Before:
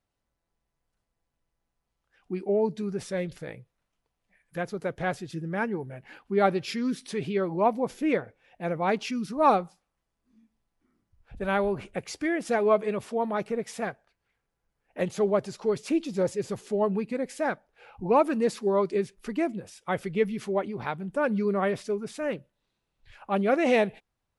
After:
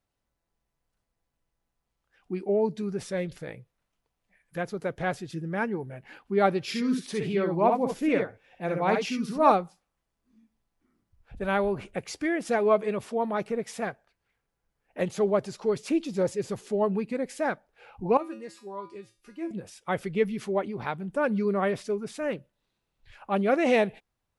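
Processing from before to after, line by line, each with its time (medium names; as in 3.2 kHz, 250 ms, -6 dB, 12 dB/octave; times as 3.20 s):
6.63–9.52 s: multi-tap echo 55/66 ms -8/-6 dB
18.17–19.51 s: feedback comb 110 Hz, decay 0.32 s, harmonics odd, mix 90%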